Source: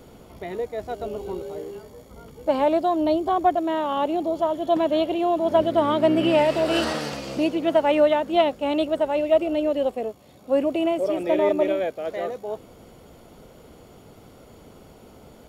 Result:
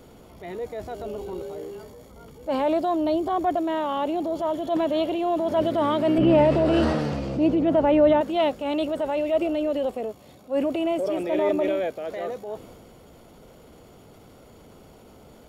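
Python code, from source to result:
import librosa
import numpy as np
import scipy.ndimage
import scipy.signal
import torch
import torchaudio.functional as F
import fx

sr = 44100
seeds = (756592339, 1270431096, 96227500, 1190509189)

y = fx.tilt_eq(x, sr, slope=-3.5, at=(6.18, 8.21))
y = fx.transient(y, sr, attack_db=-6, sustain_db=4)
y = F.gain(torch.from_numpy(y), -1.5).numpy()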